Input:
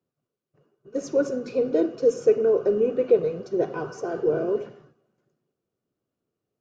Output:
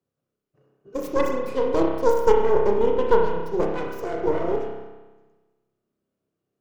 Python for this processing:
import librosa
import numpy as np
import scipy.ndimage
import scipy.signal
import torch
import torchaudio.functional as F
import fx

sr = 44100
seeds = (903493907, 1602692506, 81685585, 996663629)

y = fx.tracing_dist(x, sr, depth_ms=0.44)
y = fx.rev_spring(y, sr, rt60_s=1.2, pass_ms=(30,), chirp_ms=60, drr_db=0.0)
y = y * 10.0 ** (-1.5 / 20.0)